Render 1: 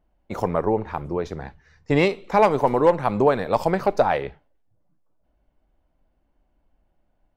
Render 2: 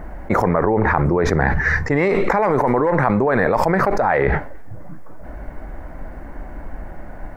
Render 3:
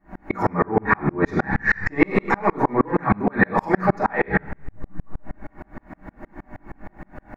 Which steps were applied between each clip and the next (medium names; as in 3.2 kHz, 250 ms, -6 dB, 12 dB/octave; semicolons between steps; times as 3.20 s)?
resonant high shelf 2.4 kHz -8 dB, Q 3; level flattener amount 100%; trim -5 dB
reverberation RT60 0.55 s, pre-delay 3 ms, DRR -6.5 dB; sawtooth tremolo in dB swelling 6.4 Hz, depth 37 dB; trim -2.5 dB